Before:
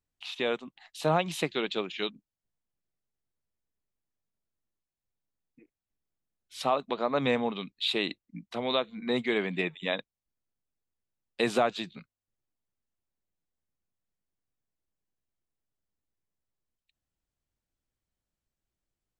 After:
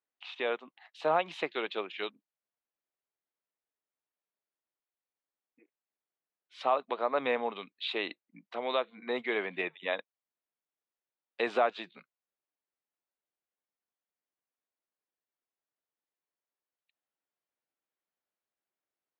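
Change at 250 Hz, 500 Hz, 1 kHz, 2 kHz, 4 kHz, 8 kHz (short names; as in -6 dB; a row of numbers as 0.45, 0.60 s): -9.0 dB, -2.0 dB, -0.5 dB, -1.5 dB, -6.5 dB, under -15 dB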